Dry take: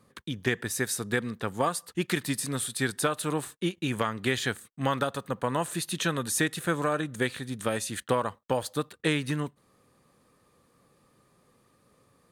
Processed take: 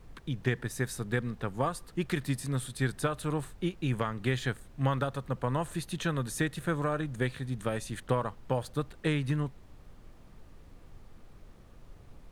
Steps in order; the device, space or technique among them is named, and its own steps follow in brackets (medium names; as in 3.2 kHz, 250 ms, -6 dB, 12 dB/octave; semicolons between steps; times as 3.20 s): car interior (peaking EQ 130 Hz +8.5 dB 0.52 oct; treble shelf 3.1 kHz -7.5 dB; brown noise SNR 16 dB); trim -3.5 dB